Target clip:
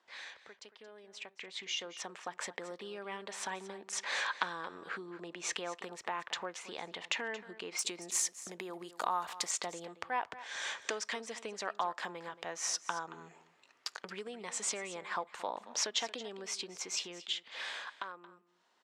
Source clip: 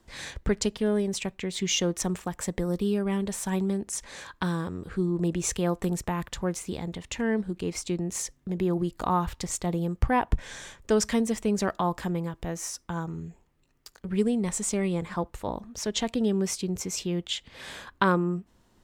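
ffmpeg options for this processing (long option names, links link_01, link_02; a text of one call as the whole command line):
ffmpeg -i in.wav -af "asetnsamples=nb_out_samples=441:pad=0,asendcmd='7.79 lowpass f 12000;9.51 lowpass f 5200',lowpass=4000,acompressor=threshold=-41dB:ratio=5,highpass=750,aecho=1:1:226:0.168,dynaudnorm=framelen=120:gausssize=31:maxgain=14dB,volume=-2.5dB" out.wav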